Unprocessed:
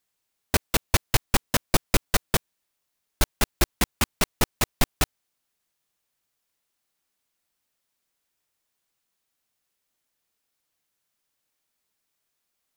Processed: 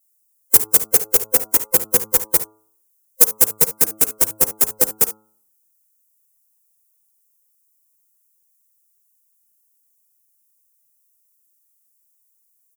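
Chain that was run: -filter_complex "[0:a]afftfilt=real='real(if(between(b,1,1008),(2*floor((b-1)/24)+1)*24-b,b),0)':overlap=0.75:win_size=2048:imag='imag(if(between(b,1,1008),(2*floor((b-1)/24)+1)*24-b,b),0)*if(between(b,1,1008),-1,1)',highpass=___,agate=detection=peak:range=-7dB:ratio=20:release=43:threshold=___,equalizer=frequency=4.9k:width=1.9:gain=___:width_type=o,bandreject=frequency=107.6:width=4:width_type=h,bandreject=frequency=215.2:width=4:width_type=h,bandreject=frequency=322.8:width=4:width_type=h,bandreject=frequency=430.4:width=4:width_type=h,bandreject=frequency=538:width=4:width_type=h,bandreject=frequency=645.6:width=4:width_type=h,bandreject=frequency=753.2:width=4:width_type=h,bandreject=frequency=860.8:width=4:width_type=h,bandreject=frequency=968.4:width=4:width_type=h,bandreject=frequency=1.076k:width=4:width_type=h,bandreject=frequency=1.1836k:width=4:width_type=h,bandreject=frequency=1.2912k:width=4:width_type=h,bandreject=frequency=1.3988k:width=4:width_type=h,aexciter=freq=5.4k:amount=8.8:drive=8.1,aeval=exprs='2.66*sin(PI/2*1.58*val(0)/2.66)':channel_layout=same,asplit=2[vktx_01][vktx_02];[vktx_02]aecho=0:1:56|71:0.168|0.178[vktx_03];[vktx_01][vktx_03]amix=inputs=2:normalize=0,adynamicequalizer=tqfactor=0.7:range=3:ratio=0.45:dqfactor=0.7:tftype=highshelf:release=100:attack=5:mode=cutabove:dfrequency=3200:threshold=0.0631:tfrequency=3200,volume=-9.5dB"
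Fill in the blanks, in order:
44, -45dB, -5.5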